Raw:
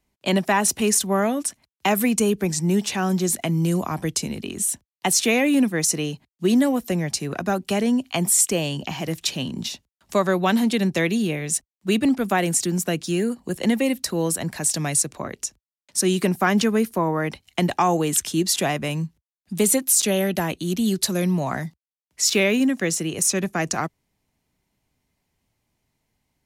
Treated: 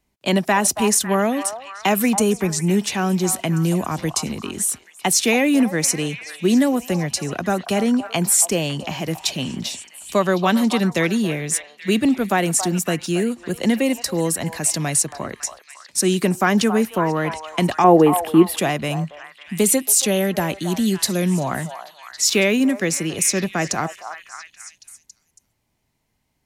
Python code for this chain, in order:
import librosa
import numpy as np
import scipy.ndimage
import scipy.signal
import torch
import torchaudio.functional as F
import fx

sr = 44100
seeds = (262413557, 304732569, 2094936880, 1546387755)

y = fx.curve_eq(x, sr, hz=(120.0, 410.0, 2900.0, 6400.0, 11000.0), db=(0, 10, -2, -25, -2), at=(17.84, 18.57))
y = fx.echo_stepped(y, sr, ms=277, hz=880.0, octaves=0.7, feedback_pct=70, wet_db=-7)
y = y * librosa.db_to_amplitude(2.0)